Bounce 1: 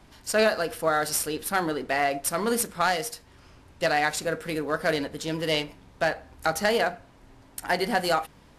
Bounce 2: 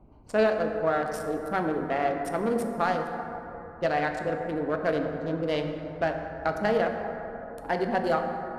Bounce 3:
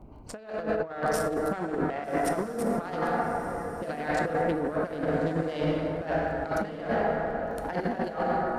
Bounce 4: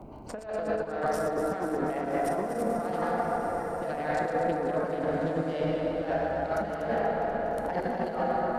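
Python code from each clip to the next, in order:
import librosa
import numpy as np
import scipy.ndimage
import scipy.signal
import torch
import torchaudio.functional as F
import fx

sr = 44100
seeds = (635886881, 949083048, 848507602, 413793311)

y1 = fx.wiener(x, sr, points=25)
y1 = fx.lowpass(y1, sr, hz=1300.0, slope=6)
y1 = fx.rev_plate(y1, sr, seeds[0], rt60_s=3.6, hf_ratio=0.35, predelay_ms=0, drr_db=4.0)
y2 = fx.dmg_crackle(y1, sr, seeds[1], per_s=19.0, level_db=-55.0)
y2 = fx.over_compress(y2, sr, threshold_db=-31.0, ratio=-0.5)
y2 = fx.echo_diffused(y2, sr, ms=1225, feedback_pct=40, wet_db=-11.5)
y2 = y2 * 10.0 ** (2.5 / 20.0)
y3 = fx.reverse_delay_fb(y2, sr, ms=121, feedback_pct=75, wet_db=-8.0)
y3 = fx.peak_eq(y3, sr, hz=670.0, db=4.0, octaves=1.1)
y3 = fx.band_squash(y3, sr, depth_pct=40)
y3 = y3 * 10.0 ** (-4.5 / 20.0)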